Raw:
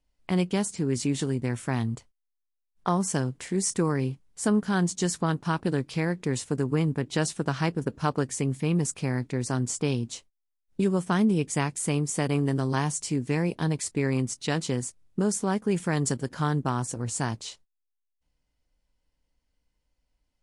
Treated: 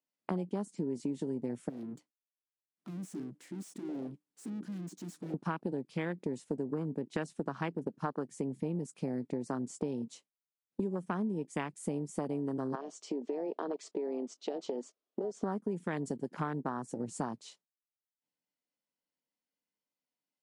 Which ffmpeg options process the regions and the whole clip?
-filter_complex "[0:a]asettb=1/sr,asplit=3[a][b][c];[a]atrim=end=1.694[d];[b]atrim=start=1.69:end=5.34,asetpts=PTS-STARTPTS,afade=t=in:d=0.004:c=qsin,afade=t=out:st=3.646:d=0.004:c=qsin,equalizer=f=300:w=6.4:g=13.5,aeval=exprs='(tanh(100*val(0)+0.5)-tanh(0.5))/100':c=same[e];[c]atrim=start=5.336[f];[d][e]acrossfade=d=0.004:c1=hsin:c2=qsin[g];[g][f]acrossfade=d=0.004:c1=qsin:c2=hsin,asettb=1/sr,asplit=3[h][i][j];[h]atrim=end=12.754[k];[i]atrim=start=12.75:end=15.43,asetpts=PTS-STARTPTS,afade=t=in:d=0.004:c=qsin,afade=t=out:st=2.676:d=0.004:c=qsin,highpass=f=260:w=0.5412,highpass=f=260:w=1.3066,equalizer=f=430:t=q:w=4:g=7,equalizer=f=650:t=q:w=4:g=8,equalizer=f=1.2k:t=q:w=4:g=6,equalizer=f=1.9k:t=q:w=4:g=-3,equalizer=f=3.2k:t=q:w=4:g=4,lowpass=f=6.3k:w=0.5412,lowpass=f=6.3k:w=1.3066,acompressor=threshold=-32dB:ratio=4:attack=3.2:release=140:knee=1:detection=peak[l];[j]atrim=start=15.426[m];[k][l]acrossfade=d=0.004:c1=hsin:c2=qsin[n];[n][m]acrossfade=d=0.004:c1=qsin:c2=hsin,afwtdn=0.0224,highpass=f=180:w=0.5412,highpass=f=180:w=1.3066,acompressor=threshold=-37dB:ratio=6,volume=4.5dB"

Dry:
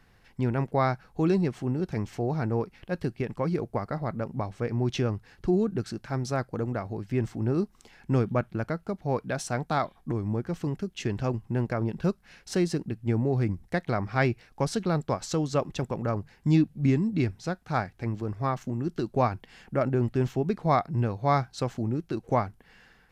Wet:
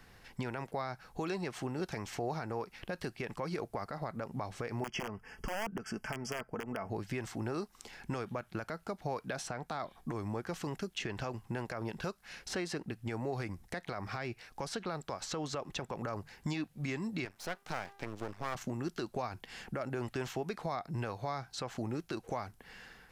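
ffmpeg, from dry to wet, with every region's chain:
-filter_complex "[0:a]asettb=1/sr,asplit=3[a][b][c];[a]atrim=end=4.814[d];[b]atrim=start=4.81:end=6.9,asetpts=PTS-STARTPTS,afade=t=in:d=0.004:c=qsin,afade=t=out:st=2.086:d=0.004:c=qsin,aecho=1:1:4.6:0.46,atrim=end_sample=92169,aeval=exprs='(mod(7.94*val(0)+1,2)-1)/7.94':c=same,asuperstop=centerf=3900:order=12:qfactor=2.9[e];[c]atrim=start=6.896[f];[d][e]acrossfade=d=0.004:c1=hsin:c2=qsin[g];[g][f]acrossfade=d=0.004:c1=qsin:c2=hsin,asettb=1/sr,asplit=3[h][i][j];[h]atrim=end=17.254[k];[i]atrim=start=17.25:end=18.55,asetpts=PTS-STARTPTS,afade=t=in:d=0.004:c=qsin,afade=t=out:st=1.296:d=0.004:c=qsin,highpass=f=220:p=1,bandreject=f=398.6:t=h:w=4,bandreject=f=797.2:t=h:w=4,bandreject=f=1.1958k:t=h:w=4,aeval=exprs='max(val(0),0)':c=same[l];[j]atrim=start=18.546[m];[k][l]acrossfade=d=0.004:c1=hsin:c2=qsin[n];[n][m]acrossfade=d=0.004:c1=qsin:c2=hsin,bass=f=250:g=-3,treble=f=4k:g=3,acrossover=split=590|3300[o][p][q];[o]acompressor=threshold=-41dB:ratio=4[r];[p]acompressor=threshold=-34dB:ratio=4[s];[q]acompressor=threshold=-50dB:ratio=4[t];[r][s][t]amix=inputs=3:normalize=0,alimiter=level_in=6dB:limit=-24dB:level=0:latency=1:release=106,volume=-6dB,volume=3.5dB"

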